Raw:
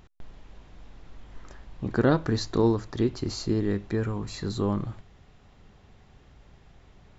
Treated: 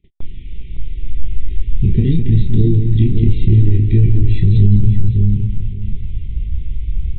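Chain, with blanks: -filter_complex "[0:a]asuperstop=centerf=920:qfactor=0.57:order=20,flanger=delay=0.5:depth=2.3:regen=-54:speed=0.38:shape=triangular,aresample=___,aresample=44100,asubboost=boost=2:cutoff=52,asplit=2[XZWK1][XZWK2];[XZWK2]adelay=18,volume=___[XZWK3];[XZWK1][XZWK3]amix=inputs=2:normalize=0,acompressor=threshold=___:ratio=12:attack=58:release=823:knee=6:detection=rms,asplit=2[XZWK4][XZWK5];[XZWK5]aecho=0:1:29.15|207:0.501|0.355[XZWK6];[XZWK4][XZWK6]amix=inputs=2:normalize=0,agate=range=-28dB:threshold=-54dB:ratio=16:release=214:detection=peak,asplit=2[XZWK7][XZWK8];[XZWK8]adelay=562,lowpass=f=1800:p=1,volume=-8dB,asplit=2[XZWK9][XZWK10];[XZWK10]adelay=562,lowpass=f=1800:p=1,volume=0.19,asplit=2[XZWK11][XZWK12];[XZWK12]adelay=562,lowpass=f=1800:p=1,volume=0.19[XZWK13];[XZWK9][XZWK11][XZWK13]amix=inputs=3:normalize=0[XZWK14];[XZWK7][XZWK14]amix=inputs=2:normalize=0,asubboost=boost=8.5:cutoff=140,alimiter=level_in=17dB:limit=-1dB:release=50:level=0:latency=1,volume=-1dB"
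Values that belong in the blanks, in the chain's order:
8000, -13dB, -31dB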